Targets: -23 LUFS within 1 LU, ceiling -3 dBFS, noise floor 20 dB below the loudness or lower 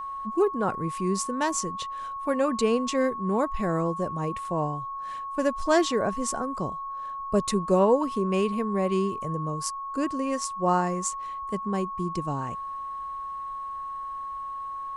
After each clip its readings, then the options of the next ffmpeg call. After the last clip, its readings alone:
steady tone 1100 Hz; tone level -32 dBFS; loudness -28.0 LUFS; peak -10.0 dBFS; loudness target -23.0 LUFS
-> -af "bandreject=f=1.1k:w=30"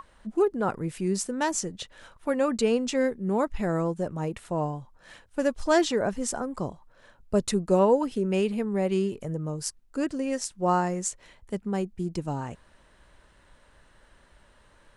steady tone none; loudness -28.0 LUFS; peak -10.5 dBFS; loudness target -23.0 LUFS
-> -af "volume=5dB"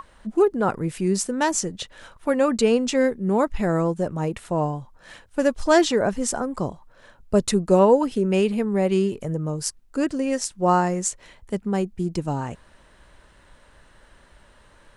loudness -23.0 LUFS; peak -5.5 dBFS; noise floor -55 dBFS

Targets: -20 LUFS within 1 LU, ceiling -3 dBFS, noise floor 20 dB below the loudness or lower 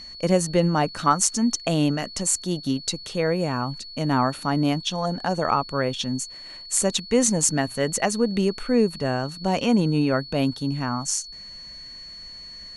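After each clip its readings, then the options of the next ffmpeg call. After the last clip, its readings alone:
steady tone 4400 Hz; tone level -38 dBFS; loudness -23.5 LUFS; peak -3.5 dBFS; loudness target -20.0 LUFS
-> -af "bandreject=f=4.4k:w=30"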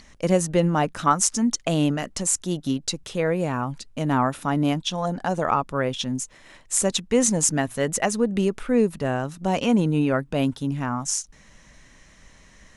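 steady tone none; loudness -23.5 LUFS; peak -3.5 dBFS; loudness target -20.0 LUFS
-> -af "volume=3.5dB,alimiter=limit=-3dB:level=0:latency=1"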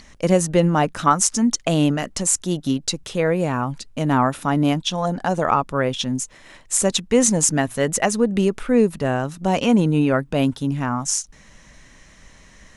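loudness -20.0 LUFS; peak -3.0 dBFS; noise floor -49 dBFS

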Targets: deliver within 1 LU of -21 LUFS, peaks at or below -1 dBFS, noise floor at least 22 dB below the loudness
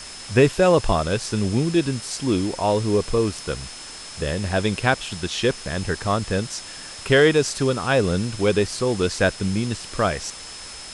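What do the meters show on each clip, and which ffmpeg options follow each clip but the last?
steady tone 5200 Hz; tone level -40 dBFS; noise floor -38 dBFS; noise floor target -44 dBFS; loudness -22.0 LUFS; peak -3.0 dBFS; loudness target -21.0 LUFS
-> -af "bandreject=f=5.2k:w=30"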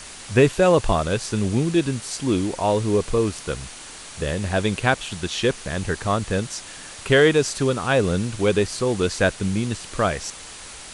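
steady tone none; noise floor -39 dBFS; noise floor target -44 dBFS
-> -af "afftdn=nr=6:nf=-39"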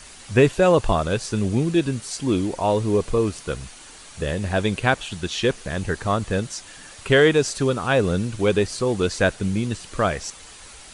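noise floor -44 dBFS; loudness -22.0 LUFS; peak -3.0 dBFS; loudness target -21.0 LUFS
-> -af "volume=1dB"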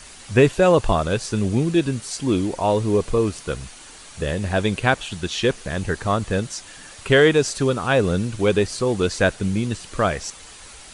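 loudness -21.0 LUFS; peak -2.0 dBFS; noise floor -43 dBFS

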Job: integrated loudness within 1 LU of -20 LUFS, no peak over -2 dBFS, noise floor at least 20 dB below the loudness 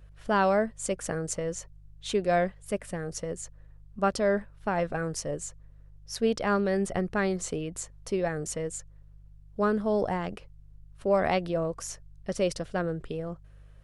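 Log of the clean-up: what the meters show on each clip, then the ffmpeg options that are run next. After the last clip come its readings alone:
hum 50 Hz; harmonics up to 150 Hz; hum level -49 dBFS; loudness -30.0 LUFS; peak -13.0 dBFS; loudness target -20.0 LUFS
-> -af "bandreject=f=50:t=h:w=4,bandreject=f=100:t=h:w=4,bandreject=f=150:t=h:w=4"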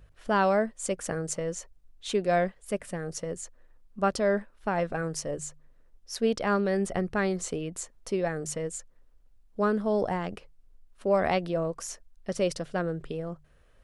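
hum none; loudness -30.0 LUFS; peak -13.0 dBFS; loudness target -20.0 LUFS
-> -af "volume=10dB"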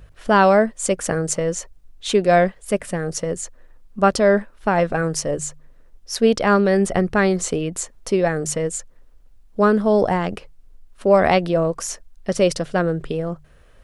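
loudness -20.0 LUFS; peak -3.0 dBFS; noise floor -50 dBFS

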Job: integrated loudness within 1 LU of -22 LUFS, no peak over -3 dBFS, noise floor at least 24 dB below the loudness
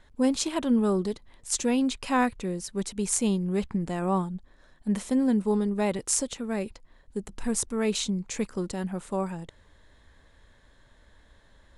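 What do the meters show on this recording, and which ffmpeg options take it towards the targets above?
loudness -28.0 LUFS; peak -8.0 dBFS; loudness target -22.0 LUFS
-> -af "volume=6dB,alimiter=limit=-3dB:level=0:latency=1"

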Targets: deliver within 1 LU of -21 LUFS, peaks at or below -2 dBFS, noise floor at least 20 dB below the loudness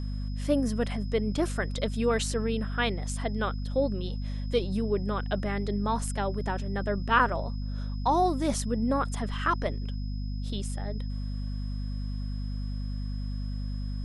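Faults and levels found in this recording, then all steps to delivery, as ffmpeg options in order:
hum 50 Hz; harmonics up to 250 Hz; hum level -30 dBFS; steady tone 5100 Hz; tone level -52 dBFS; loudness -30.5 LUFS; peak -10.0 dBFS; loudness target -21.0 LUFS
-> -af "bandreject=f=50:t=h:w=6,bandreject=f=100:t=h:w=6,bandreject=f=150:t=h:w=6,bandreject=f=200:t=h:w=6,bandreject=f=250:t=h:w=6"
-af "bandreject=f=5.1k:w=30"
-af "volume=9.5dB,alimiter=limit=-2dB:level=0:latency=1"

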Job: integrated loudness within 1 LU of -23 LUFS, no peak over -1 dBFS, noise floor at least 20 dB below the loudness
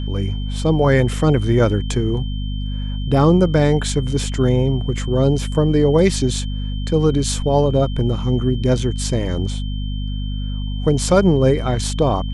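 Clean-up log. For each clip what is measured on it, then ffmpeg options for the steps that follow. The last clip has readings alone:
hum 50 Hz; harmonics up to 250 Hz; hum level -21 dBFS; steady tone 3100 Hz; tone level -37 dBFS; loudness -18.5 LUFS; peak -1.0 dBFS; loudness target -23.0 LUFS
-> -af "bandreject=f=50:t=h:w=6,bandreject=f=100:t=h:w=6,bandreject=f=150:t=h:w=6,bandreject=f=200:t=h:w=6,bandreject=f=250:t=h:w=6"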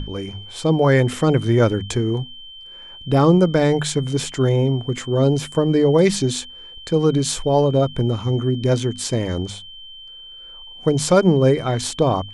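hum none; steady tone 3100 Hz; tone level -37 dBFS
-> -af "bandreject=f=3.1k:w=30"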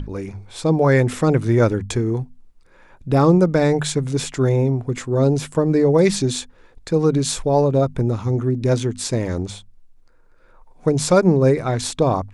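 steady tone none; loudness -19.0 LUFS; peak -2.0 dBFS; loudness target -23.0 LUFS
-> -af "volume=-4dB"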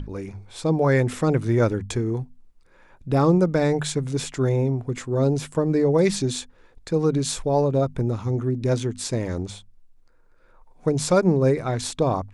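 loudness -23.0 LUFS; peak -6.0 dBFS; noise floor -55 dBFS

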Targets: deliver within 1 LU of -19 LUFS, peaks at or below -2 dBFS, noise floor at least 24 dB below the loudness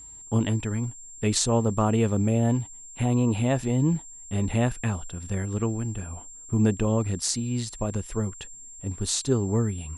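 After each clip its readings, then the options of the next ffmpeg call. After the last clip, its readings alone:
steady tone 7400 Hz; tone level -42 dBFS; loudness -26.5 LUFS; peak -6.0 dBFS; loudness target -19.0 LUFS
-> -af "bandreject=f=7.4k:w=30"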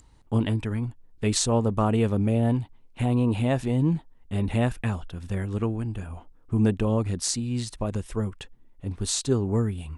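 steady tone none; loudness -26.5 LUFS; peak -6.5 dBFS; loudness target -19.0 LUFS
-> -af "volume=7.5dB,alimiter=limit=-2dB:level=0:latency=1"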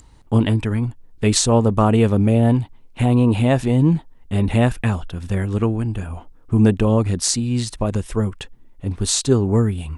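loudness -19.0 LUFS; peak -2.0 dBFS; noise floor -48 dBFS

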